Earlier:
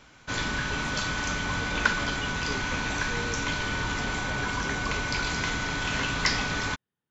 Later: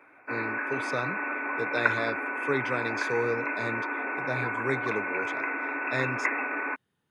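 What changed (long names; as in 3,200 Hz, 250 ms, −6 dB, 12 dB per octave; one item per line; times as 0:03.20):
speech +11.0 dB
background: add linear-phase brick-wall band-pass 250–2,700 Hz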